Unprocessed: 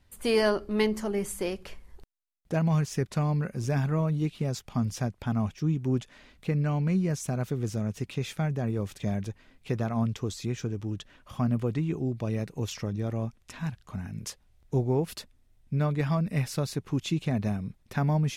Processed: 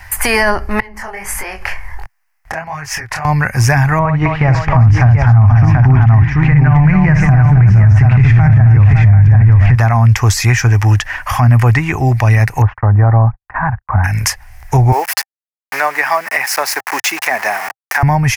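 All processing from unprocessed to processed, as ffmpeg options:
ffmpeg -i in.wav -filter_complex "[0:a]asettb=1/sr,asplit=3[link_01][link_02][link_03];[link_01]atrim=end=0.804[link_04];[link_02]atrim=start=0.8:end=3.25,asetpts=PTS-STARTPTS,afade=type=in:duration=0.004:curve=qsin,afade=type=out:start_time=2.446:duration=0.004:curve=qsin,highshelf=frequency=4200:gain=-9,acompressor=threshold=-41dB:ratio=6:attack=3.2:release=140:knee=1:detection=peak,flanger=delay=20:depth=6.9:speed=1.5[link_05];[link_03]atrim=start=3.246[link_06];[link_04][link_05]acrossfade=duration=0.004:curve1=hsin:curve2=qsin[link_07];[link_07][link_06]acrossfade=duration=0.004:curve1=qsin:curve2=hsin,asettb=1/sr,asplit=3[link_08][link_09][link_10];[link_08]atrim=end=3.994[link_11];[link_09]atrim=start=3.99:end=9.75,asetpts=PTS-STARTPTS,afade=type=in:duration=0.004:curve=qsin,afade=type=out:start_time=5.756:duration=0.004:curve=qsin,lowpass=2000,asubboost=boost=6.5:cutoff=180,aecho=1:1:59|264|555|735:0.398|0.355|0.224|0.668,atrim=end_sample=254016[link_12];[link_10]atrim=start=9.746[link_13];[link_11][link_12]acrossfade=duration=0.004:curve1=hsin:curve2=qsin[link_14];[link_14][link_13]acrossfade=duration=0.004:curve1=qsin:curve2=hsin,asettb=1/sr,asplit=3[link_15][link_16][link_17];[link_15]atrim=end=12.624[link_18];[link_16]atrim=start=12.62:end=14.04,asetpts=PTS-STARTPTS,afade=type=in:duration=0.004:curve=qsin,afade=type=out:start_time=1.416:duration=0.004:curve=qsin,lowpass=frequency=1300:width=0.5412,lowpass=frequency=1300:width=1.3066,agate=range=-56dB:threshold=-51dB:ratio=16:release=100:detection=peak[link_19];[link_17]atrim=start=14.036[link_20];[link_18][link_19]acrossfade=duration=0.004:curve1=hsin:curve2=qsin[link_21];[link_21][link_20]acrossfade=duration=0.004:curve1=qsin:curve2=hsin,asettb=1/sr,asplit=3[link_22][link_23][link_24];[link_22]atrim=end=14.924[link_25];[link_23]atrim=start=14.92:end=18.03,asetpts=PTS-STARTPTS,afade=type=in:duration=0.004:curve=qsin,afade=type=out:start_time=3.106:duration=0.004:curve=qsin,aeval=exprs='val(0)*gte(abs(val(0)),0.00891)':channel_layout=same,highpass=frequency=380:width=0.5412,highpass=frequency=380:width=1.3066[link_26];[link_24]atrim=start=18.026[link_27];[link_25][link_26]acrossfade=duration=0.004:curve1=hsin:curve2=qsin[link_28];[link_28][link_27]acrossfade=duration=0.004:curve1=qsin:curve2=hsin,firequalizer=gain_entry='entry(110,0);entry(160,-17);entry(480,-11);entry(790,10);entry(1300,5);entry(1800,15);entry(3600,-8);entry(5100,5);entry(7600,1);entry(12000,7)':delay=0.05:min_phase=1,acrossover=split=320[link_29][link_30];[link_30]acompressor=threshold=-42dB:ratio=3[link_31];[link_29][link_31]amix=inputs=2:normalize=0,alimiter=level_in=27.5dB:limit=-1dB:release=50:level=0:latency=1,volume=-1dB" out.wav

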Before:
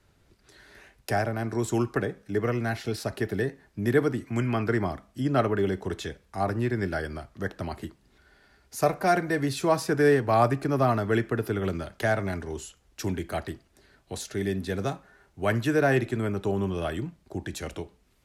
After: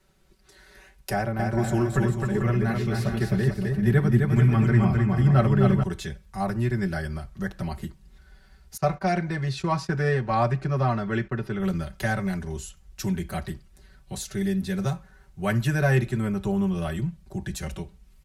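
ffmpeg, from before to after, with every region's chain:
ffmpeg -i in.wav -filter_complex "[0:a]asettb=1/sr,asplit=3[link_01][link_02][link_03];[link_01]atrim=end=1.134[link_04];[link_02]atrim=start=1.13:end=5.83,asetpts=PTS-STARTPTS,afade=type=in:duration=0.004:curve=qsin,afade=type=out:start_time=4.696:duration=0.004:curve=qsin,bass=frequency=250:gain=5,treble=frequency=4000:gain=-6,aecho=1:1:260|442|569.4|658.6|721:0.631|0.398|0.251|0.158|0.1,atrim=end_sample=207270[link_05];[link_03]atrim=start=5.826[link_06];[link_04][link_05]acrossfade=duration=0.004:curve1=hsin:curve2=qsin[link_07];[link_07][link_06]acrossfade=duration=0.004:curve1=qsin:curve2=hsin,asettb=1/sr,asplit=3[link_08][link_09][link_10];[link_08]atrim=end=8.774[link_11];[link_09]atrim=start=8.77:end=11.6,asetpts=PTS-STARTPTS,afade=type=in:duration=0.004:curve=qsin,afade=type=out:start_time=2.826:duration=0.004:curve=qsin,lowpass=4800,agate=range=-16dB:threshold=-41dB:ratio=16:release=100:detection=peak,lowshelf=frequency=180:gain=-5[link_12];[link_10]atrim=start=11.596[link_13];[link_11][link_12]acrossfade=duration=0.004:curve1=hsin:curve2=qsin[link_14];[link_14][link_13]acrossfade=duration=0.004:curve1=qsin:curve2=hsin,highshelf=frequency=6600:gain=5,aecho=1:1:5.3:0.93,asubboost=boost=6.5:cutoff=130,volume=-3dB" out.wav

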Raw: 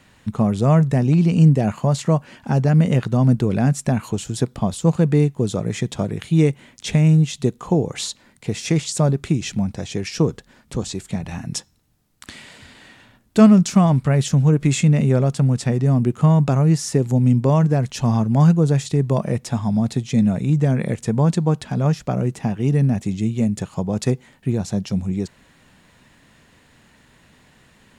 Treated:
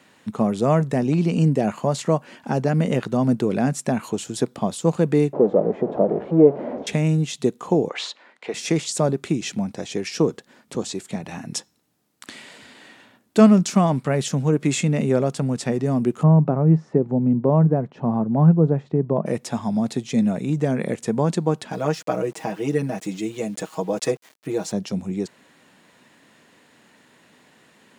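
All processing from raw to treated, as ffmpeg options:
ffmpeg -i in.wav -filter_complex "[0:a]asettb=1/sr,asplit=3[link_01][link_02][link_03];[link_01]atrim=end=5.334[link_04];[link_02]atrim=start=5.33:end=6.87,asetpts=PTS-STARTPTS,afade=type=in:duration=0.004:curve=qsin,afade=type=out:start_time=1.536:duration=0.004:curve=qsin,aeval=exprs='val(0)+0.5*0.0841*sgn(val(0))':channel_layout=same,lowpass=frequency=600:width_type=q:width=2.3,equalizer=frequency=110:width_type=o:width=0.6:gain=-13[link_05];[link_03]atrim=start=6.866[link_06];[link_04][link_05]acrossfade=duration=0.004:curve1=hsin:curve2=qsin[link_07];[link_07][link_06]acrossfade=duration=0.004:curve1=qsin:curve2=hsin,asettb=1/sr,asplit=3[link_08][link_09][link_10];[link_08]atrim=end=7.894[link_11];[link_09]atrim=start=7.89:end=8.54,asetpts=PTS-STARTPTS,afade=type=in:duration=0.004:curve=qsin,afade=type=out:start_time=0.646:duration=0.004:curve=qsin,highpass=590,lowpass=2900,acontrast=47[link_12];[link_10]atrim=start=8.536[link_13];[link_11][link_12]acrossfade=duration=0.004:curve1=hsin:curve2=qsin[link_14];[link_14][link_13]acrossfade=duration=0.004:curve1=qsin:curve2=hsin,asettb=1/sr,asplit=3[link_15][link_16][link_17];[link_15]atrim=end=16.234[link_18];[link_16]atrim=start=16.23:end=19.26,asetpts=PTS-STARTPTS,afade=type=in:duration=0.004:curve=qsin,afade=type=out:start_time=3.026:duration=0.004:curve=qsin,lowpass=1000,equalizer=frequency=160:width_type=o:width=0.22:gain=7[link_19];[link_17]atrim=start=19.256[link_20];[link_18][link_19]acrossfade=duration=0.004:curve1=hsin:curve2=qsin[link_21];[link_21][link_20]acrossfade=duration=0.004:curve1=qsin:curve2=hsin,asettb=1/sr,asplit=3[link_22][link_23][link_24];[link_22]atrim=end=21.724[link_25];[link_23]atrim=start=21.72:end=24.72,asetpts=PTS-STARTPTS,afade=type=in:duration=0.004:curve=qsin,afade=type=out:start_time=2.996:duration=0.004:curve=qsin,bass=frequency=250:gain=-10,treble=frequency=4000:gain=0,aecho=1:1:6.3:0.95,atrim=end_sample=132300,aeval=exprs='val(0)*gte(abs(val(0)),0.00668)':channel_layout=same[link_26];[link_24]atrim=start=24.716[link_27];[link_25][link_26]acrossfade=duration=0.004:curve1=hsin:curve2=qsin[link_28];[link_28][link_27]acrossfade=duration=0.004:curve1=qsin:curve2=hsin,highpass=300,lowshelf=frequency=420:gain=7,volume=-1dB" out.wav

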